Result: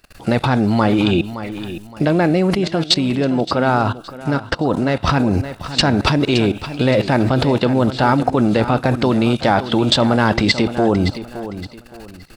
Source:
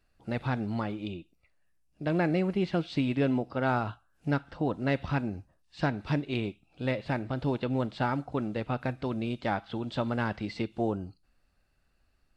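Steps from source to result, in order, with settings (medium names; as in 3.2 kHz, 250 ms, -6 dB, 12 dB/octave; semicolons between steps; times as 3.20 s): dynamic bell 2.4 kHz, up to -7 dB, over -48 dBFS, Q 0.82; level held to a coarse grid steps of 23 dB; tilt EQ +1.5 dB/octave; feedback delay 568 ms, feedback 31%, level -12.5 dB; loudness maximiser +35 dB; 2.55–5.05 s: upward expansion 1.5:1, over -22 dBFS; trim -1 dB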